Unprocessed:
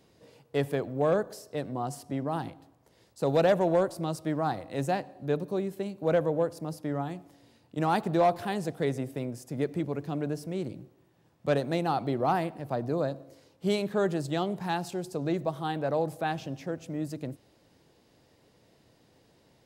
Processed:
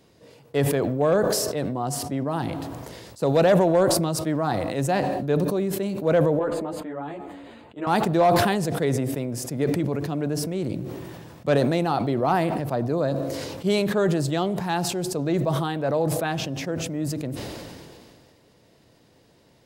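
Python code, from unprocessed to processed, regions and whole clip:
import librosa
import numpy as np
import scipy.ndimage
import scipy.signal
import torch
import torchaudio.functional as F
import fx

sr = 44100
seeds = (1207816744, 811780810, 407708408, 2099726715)

y = fx.chain(x, sr, fx.moving_average(points=8),
    fx.peak_eq(hz=120.0, db=-13.5, octaves=1.4),
    fx.ensemble(), at=(6.39, 7.87))
y = fx.notch(y, sr, hz=790.0, q=24.0)
y = fx.sustainer(y, sr, db_per_s=26.0)
y = y * librosa.db_to_amplitude(4.5)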